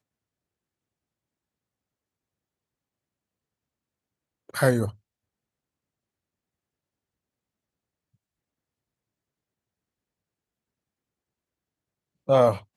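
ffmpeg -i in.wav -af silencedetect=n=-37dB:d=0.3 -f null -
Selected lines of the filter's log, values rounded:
silence_start: 0.00
silence_end: 4.49 | silence_duration: 4.49
silence_start: 4.90
silence_end: 12.28 | silence_duration: 7.38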